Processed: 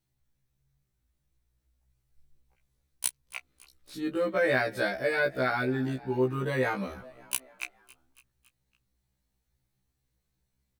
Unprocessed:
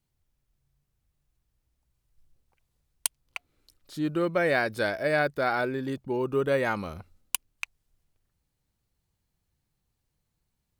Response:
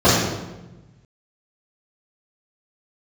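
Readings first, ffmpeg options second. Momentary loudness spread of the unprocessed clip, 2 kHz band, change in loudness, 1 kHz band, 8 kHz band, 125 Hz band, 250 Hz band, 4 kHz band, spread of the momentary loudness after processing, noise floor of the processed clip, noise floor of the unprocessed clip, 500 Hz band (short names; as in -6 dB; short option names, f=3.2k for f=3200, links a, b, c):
16 LU, -0.5 dB, -1.5 dB, -3.0 dB, -1.0 dB, +1.0 dB, -1.0 dB, -1.5 dB, 15 LU, -79 dBFS, -80 dBFS, -1.5 dB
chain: -filter_complex "[0:a]asplit=2[a][b];[b]adelay=16,volume=-12dB[c];[a][c]amix=inputs=2:normalize=0,asplit=5[d][e][f][g][h];[e]adelay=279,afreqshift=42,volume=-22dB[i];[f]adelay=558,afreqshift=84,volume=-26.6dB[j];[g]adelay=837,afreqshift=126,volume=-31.2dB[k];[h]adelay=1116,afreqshift=168,volume=-35.7dB[l];[d][i][j][k][l]amix=inputs=5:normalize=0,afftfilt=real='re*1.73*eq(mod(b,3),0)':imag='im*1.73*eq(mod(b,3),0)':win_size=2048:overlap=0.75,volume=1dB"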